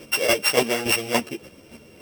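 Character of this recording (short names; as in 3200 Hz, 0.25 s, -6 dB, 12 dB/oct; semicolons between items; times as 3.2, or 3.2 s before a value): a buzz of ramps at a fixed pitch in blocks of 16 samples; chopped level 3.5 Hz, depth 60%, duty 15%; a shimmering, thickened sound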